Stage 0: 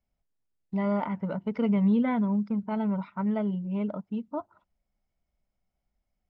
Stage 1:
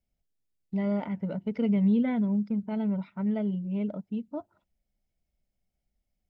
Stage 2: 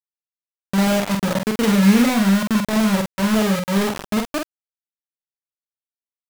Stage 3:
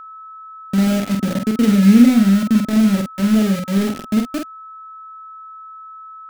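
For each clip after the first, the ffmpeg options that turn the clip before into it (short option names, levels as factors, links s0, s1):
-af "equalizer=f=1100:t=o:w=0.88:g=-12.5"
-filter_complex "[0:a]acrusher=bits=4:mix=0:aa=0.000001,asplit=2[s0][s1];[s1]adelay=46,volume=0.631[s2];[s0][s2]amix=inputs=2:normalize=0,volume=2.51"
-af "equalizer=f=100:t=o:w=0.67:g=4,equalizer=f=250:t=o:w=0.67:g=11,equalizer=f=1000:t=o:w=0.67:g=-11,aeval=exprs='val(0)+0.0282*sin(2*PI*1300*n/s)':c=same,volume=0.708"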